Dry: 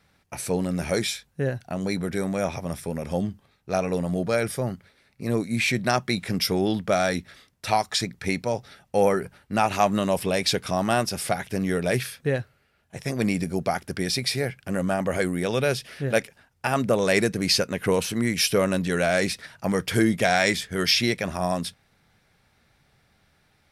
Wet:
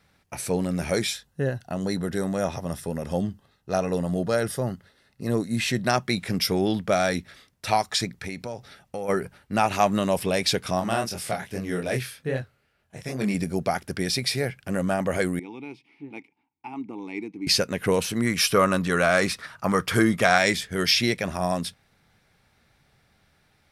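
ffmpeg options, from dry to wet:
-filter_complex "[0:a]asettb=1/sr,asplit=3[a][b][c];[a]atrim=end=1.134[d];[b]atrim=start=1.13:end=5.87,asetpts=PTS-STARTPTS,afade=t=in:d=0.004:c=qsin,afade=t=out:st=4.736:d=0.004:c=qsin,asuperstop=centerf=2300:order=4:qfactor=6.5[e];[c]atrim=start=5.866[f];[d][e]acrossfade=d=0.004:c1=hsin:c2=qsin[g];[g][f]acrossfade=d=0.004:c1=qsin:c2=hsin,asplit=3[h][i][j];[h]afade=t=out:st=8.2:d=0.02[k];[i]acompressor=threshold=-30dB:ratio=4:attack=3.2:release=140:knee=1:detection=peak,afade=t=in:st=8.2:d=0.02,afade=t=out:st=9.08:d=0.02[l];[j]afade=t=in:st=9.08:d=0.02[m];[k][l][m]amix=inputs=3:normalize=0,asplit=3[n][o][p];[n]afade=t=out:st=10.79:d=0.02[q];[o]flanger=delay=22.5:depth=5:speed=2.5,afade=t=in:st=10.79:d=0.02,afade=t=out:st=13.33:d=0.02[r];[p]afade=t=in:st=13.33:d=0.02[s];[q][r][s]amix=inputs=3:normalize=0,asettb=1/sr,asplit=3[t][u][v];[t]atrim=end=15.394[w];[u]atrim=start=15.39:end=17.47,asetpts=PTS-STARTPTS,afade=t=in:d=0.004:c=qsin,afade=t=out:st=2.076:d=0.004:c=qsin,asplit=3[x][y][z];[x]bandpass=f=300:t=q:w=8,volume=0dB[aa];[y]bandpass=f=870:t=q:w=8,volume=-6dB[ab];[z]bandpass=f=2.24k:t=q:w=8,volume=-9dB[ac];[aa][ab][ac]amix=inputs=3:normalize=0[ad];[v]atrim=start=17.466[ae];[w][ad]acrossfade=d=0.004:c1=hsin:c2=qsin[af];[af][ae]acrossfade=d=0.004:c1=qsin:c2=hsin,asettb=1/sr,asplit=3[ag][ah][ai];[ag]atrim=end=18.264[aj];[ah]atrim=start=18.26:end=20.38,asetpts=PTS-STARTPTS,afade=t=in:d=0.004:c=qsin,afade=t=out:st=2.116:d=0.004:c=qsin,equalizer=f=1.2k:t=o:w=0.56:g=11.5[ak];[ai]atrim=start=20.376[al];[aj][ak]acrossfade=d=0.004:c1=hsin:c2=qsin[am];[am][al]acrossfade=d=0.004:c1=qsin:c2=hsin"

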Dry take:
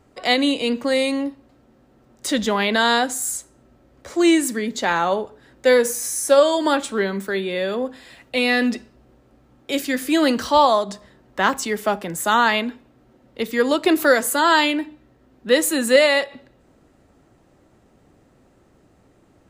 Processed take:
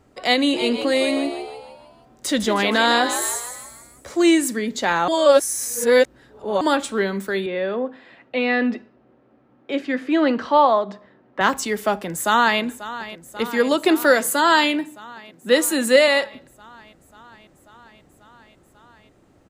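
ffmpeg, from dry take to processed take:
-filter_complex "[0:a]asplit=3[a][b][c];[a]afade=t=out:st=0.52:d=0.02[d];[b]asplit=7[e][f][g][h][i][j][k];[f]adelay=156,afreqshift=80,volume=-8.5dB[l];[g]adelay=312,afreqshift=160,volume=-14.5dB[m];[h]adelay=468,afreqshift=240,volume=-20.5dB[n];[i]adelay=624,afreqshift=320,volume=-26.6dB[o];[j]adelay=780,afreqshift=400,volume=-32.6dB[p];[k]adelay=936,afreqshift=480,volume=-38.6dB[q];[e][l][m][n][o][p][q]amix=inputs=7:normalize=0,afade=t=in:st=0.52:d=0.02,afade=t=out:st=4.22:d=0.02[r];[c]afade=t=in:st=4.22:d=0.02[s];[d][r][s]amix=inputs=3:normalize=0,asettb=1/sr,asplit=3[t][u][v];[t]atrim=end=7.464[w];[u]atrim=start=7.46:end=11.41,asetpts=PTS-STARTPTS,afade=t=in:d=0.004:c=qsin,afade=t=out:st=3.946:d=0.004:c=qsin,highpass=170,lowpass=2.3k[x];[v]atrim=start=11.406[y];[w][x]acrossfade=d=0.004:c1=hsin:c2=qsin[z];[z][y]acrossfade=d=0.004:c1=qsin:c2=hsin,asplit=2[aa][ab];[ab]afade=t=in:st=11.92:d=0.01,afade=t=out:st=12.61:d=0.01,aecho=0:1:540|1080|1620|2160|2700|3240|3780|4320|4860|5400|5940|6480:0.188365|0.150692|0.120554|0.0964428|0.0771543|0.0617234|0.0493787|0.039503|0.0316024|0.0252819|0.0202255|0.0161804[ac];[aa][ac]amix=inputs=2:normalize=0,asettb=1/sr,asplit=3[ad][ae][af];[ad]atrim=end=13.474[ag];[ae]atrim=start=13.47:end=16.08,asetpts=PTS-STARTPTS,afade=t=in:d=0.004:c=qsin,afade=t=out:st=2.606:d=0.004:c=qsin,highpass=f=120:w=0.5412,highpass=f=120:w=1.3066[ah];[af]atrim=start=16.076[ai];[ag][ah]acrossfade=d=0.004:c1=hsin:c2=qsin[aj];[aj][ai]acrossfade=d=0.004:c1=qsin:c2=hsin,asplit=3[ak][al][am];[ak]atrim=end=5.082[an];[al]atrim=start=5.078:end=6.612,asetpts=PTS-STARTPTS,areverse[ao];[am]atrim=start=6.608[ap];[an][ao]acrossfade=d=0.004:c1=hsin:c2=hsin[aq];[aq][ap]acrossfade=d=0.004:c1=hsin:c2=hsin"

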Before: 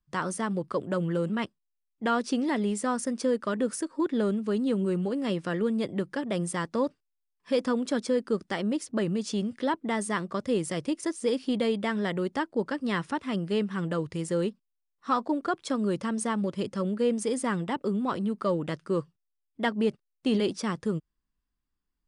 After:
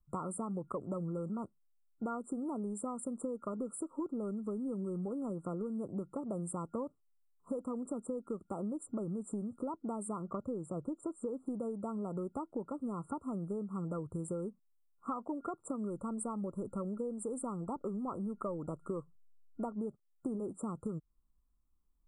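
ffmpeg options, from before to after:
-filter_complex "[0:a]asettb=1/sr,asplit=3[a][b][c];[a]atrim=end=10.224[d];[b]atrim=start=10.22:end=11.46,asetpts=PTS-STARTPTS,afade=t=in:d=0.004:c=qsin,afade=t=out:st=1.236:d=0.004:c=qsin,lowpass=5.6k[e];[c]atrim=start=11.456[f];[d][e]acrossfade=d=0.004:c1=hsin:c2=qsin[g];[g][f]acrossfade=d=0.004:c1=qsin:c2=hsin,asplit=3[h][i][j];[h]afade=t=out:st=15.88:d=0.02[k];[i]asubboost=boost=4:cutoff=51,afade=t=in:st=15.88:d=0.02,afade=t=out:st=19.75:d=0.02[l];[j]afade=t=in:st=19.75:d=0.02[m];[k][l][m]amix=inputs=3:normalize=0,afftfilt=real='re*(1-between(b*sr/4096,1400,7200))':imag='im*(1-between(b*sr/4096,1400,7200))':win_size=4096:overlap=0.75,lowshelf=f=76:g=10.5,acompressor=threshold=-34dB:ratio=12,volume=-1dB"

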